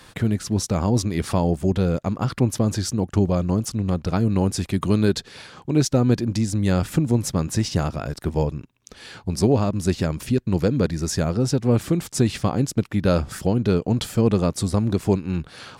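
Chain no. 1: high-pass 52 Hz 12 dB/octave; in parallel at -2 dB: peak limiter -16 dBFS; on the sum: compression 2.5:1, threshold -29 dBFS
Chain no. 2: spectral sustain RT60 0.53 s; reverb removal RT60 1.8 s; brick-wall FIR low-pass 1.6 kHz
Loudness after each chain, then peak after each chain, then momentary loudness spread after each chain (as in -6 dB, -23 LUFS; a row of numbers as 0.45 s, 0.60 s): -29.5 LUFS, -24.0 LUFS; -12.5 dBFS, -7.5 dBFS; 3 LU, 6 LU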